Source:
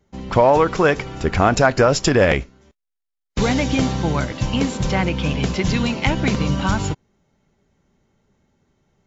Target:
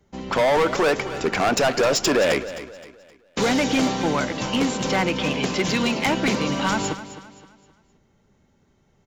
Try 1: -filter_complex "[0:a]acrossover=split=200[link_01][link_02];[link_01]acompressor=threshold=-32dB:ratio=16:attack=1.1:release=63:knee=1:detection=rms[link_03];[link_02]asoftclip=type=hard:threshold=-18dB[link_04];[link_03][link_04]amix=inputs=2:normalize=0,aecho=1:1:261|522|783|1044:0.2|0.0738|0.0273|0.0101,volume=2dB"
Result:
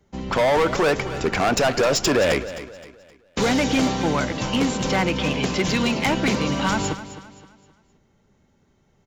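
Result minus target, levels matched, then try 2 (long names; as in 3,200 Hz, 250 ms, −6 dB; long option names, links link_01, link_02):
downward compressor: peak gain reduction −9 dB
-filter_complex "[0:a]acrossover=split=200[link_01][link_02];[link_01]acompressor=threshold=-41.5dB:ratio=16:attack=1.1:release=63:knee=1:detection=rms[link_03];[link_02]asoftclip=type=hard:threshold=-18dB[link_04];[link_03][link_04]amix=inputs=2:normalize=0,aecho=1:1:261|522|783|1044:0.2|0.0738|0.0273|0.0101,volume=2dB"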